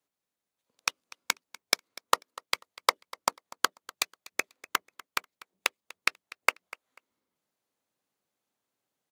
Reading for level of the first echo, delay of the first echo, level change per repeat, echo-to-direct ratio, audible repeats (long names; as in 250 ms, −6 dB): −20.0 dB, 245 ms, −13.5 dB, −20.0 dB, 2